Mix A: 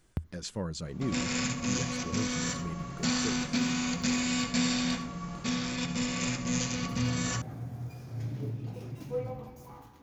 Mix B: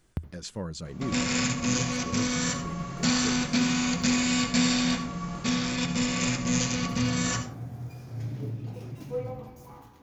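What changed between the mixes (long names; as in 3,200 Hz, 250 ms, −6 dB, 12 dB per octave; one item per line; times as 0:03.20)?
first sound: send on
second sound +4.5 dB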